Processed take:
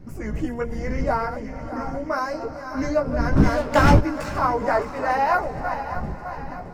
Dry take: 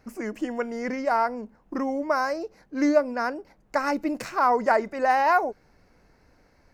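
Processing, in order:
feedback delay that plays each chunk backwards 306 ms, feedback 72%, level −10 dB
wind on the microphone 150 Hz −30 dBFS
0:03.36–0:03.99: leveller curve on the samples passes 3
multi-voice chorus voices 6, 0.3 Hz, delay 16 ms, depth 3.7 ms
on a send: feedback delay with all-pass diffusion 490 ms, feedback 48%, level −16 dB
on the sum: level +2 dB

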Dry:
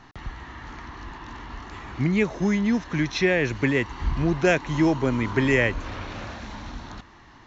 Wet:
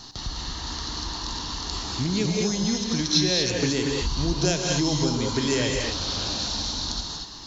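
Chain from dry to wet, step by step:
high shelf with overshoot 3,100 Hz +13.5 dB, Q 3
downward compressor 2 to 1, threshold −31 dBFS, peak gain reduction 12 dB
reverb whose tail is shaped and stops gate 260 ms rising, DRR 0 dB
level +2.5 dB

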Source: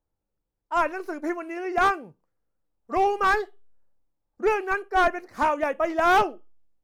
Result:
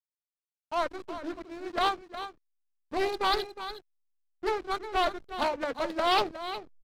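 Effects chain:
parametric band 61 Hz −11.5 dB 0.59 octaves
mains-hum notches 50/100/150/200/250/300/350/400/450 Hz
in parallel at −4.5 dB: soft clipping −23.5 dBFS, distortion −9 dB
on the sum: formants moved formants −2 semitones
low-pass with resonance 4,100 Hz, resonance Q 15
slack as between gear wheels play −24 dBFS
single-tap delay 363 ms −11.5 dB
highs frequency-modulated by the lows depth 0.17 ms
level −8.5 dB

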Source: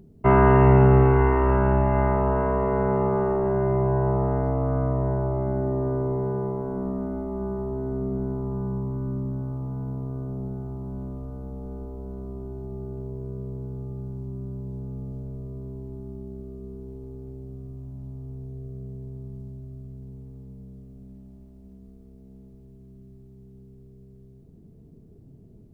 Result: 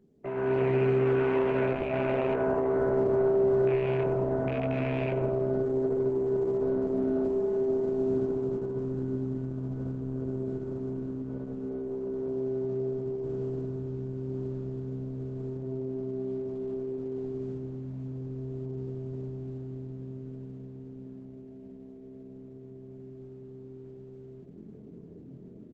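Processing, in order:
loose part that buzzes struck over −21 dBFS, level −22 dBFS
low-pass filter 2,300 Hz 12 dB per octave
double-tracking delay 23 ms −4 dB
repeating echo 94 ms, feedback 50%, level −14.5 dB
downward compressor 2 to 1, threshold −33 dBFS, peak gain reduction 13 dB
dynamic equaliser 720 Hz, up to +4 dB, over −45 dBFS, Q 1.4
automatic gain control gain up to 16 dB
high-pass filter 210 Hz 12 dB per octave
flat-topped bell 960 Hz −10.5 dB 1 octave
level −9 dB
Opus 10 kbit/s 48,000 Hz

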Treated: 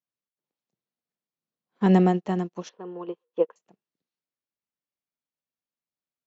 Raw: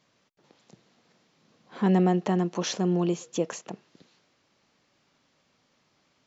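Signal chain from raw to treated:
0:02.69–0:03.56: loudspeaker in its box 370–2,900 Hz, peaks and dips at 470 Hz +9 dB, 670 Hz −5 dB, 1,000 Hz +7 dB, 2,300 Hz −8 dB
expander for the loud parts 2.5 to 1, over −44 dBFS
level +5 dB

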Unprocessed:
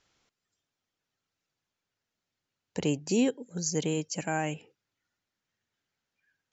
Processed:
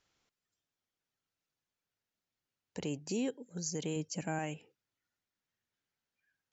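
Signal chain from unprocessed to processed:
0:03.96–0:04.39: low-shelf EQ 420 Hz +7 dB
brickwall limiter −20.5 dBFS, peak gain reduction 5 dB
level −6 dB

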